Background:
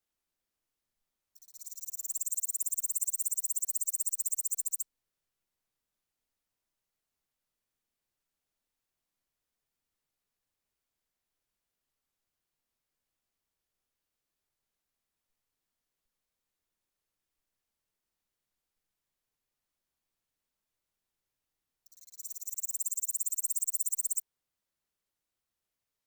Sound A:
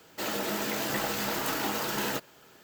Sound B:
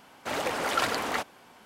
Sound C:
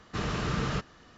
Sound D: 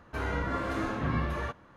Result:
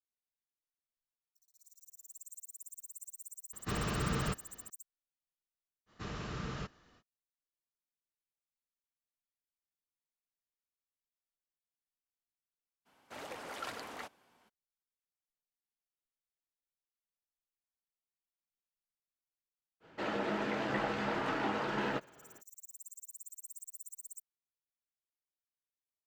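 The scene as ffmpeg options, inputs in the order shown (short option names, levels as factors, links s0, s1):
-filter_complex "[3:a]asplit=2[s0][s1];[0:a]volume=0.141[s2];[1:a]lowpass=2300[s3];[s0]atrim=end=1.17,asetpts=PTS-STARTPTS,volume=0.631,afade=t=in:d=0.004:c=hsin,afade=t=out:st=1.166:d=0.004:c=hsin,adelay=155673S[s4];[s1]atrim=end=1.17,asetpts=PTS-STARTPTS,volume=0.299,afade=t=in:d=0.05,afade=t=out:st=1.12:d=0.05,adelay=5860[s5];[2:a]atrim=end=1.65,asetpts=PTS-STARTPTS,volume=0.168,afade=t=in:d=0.02,afade=t=out:st=1.63:d=0.02,adelay=12850[s6];[s3]atrim=end=2.63,asetpts=PTS-STARTPTS,volume=0.794,afade=t=in:d=0.05,afade=t=out:st=2.58:d=0.05,adelay=19800[s7];[s2][s4][s5][s6][s7]amix=inputs=5:normalize=0"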